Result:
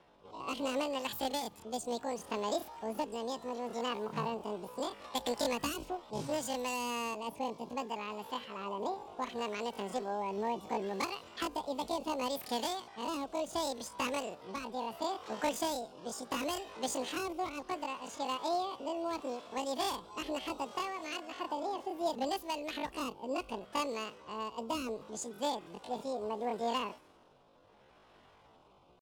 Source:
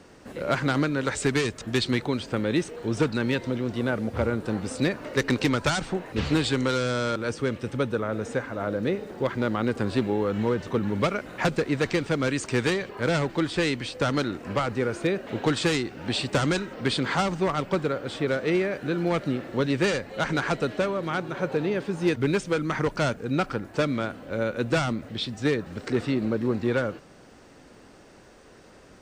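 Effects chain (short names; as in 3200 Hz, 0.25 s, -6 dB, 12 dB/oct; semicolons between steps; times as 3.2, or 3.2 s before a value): rotary speaker horn 0.7 Hz; low-pass opened by the level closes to 2000 Hz, open at -23.5 dBFS; pitch shift +11.5 st; gain -9 dB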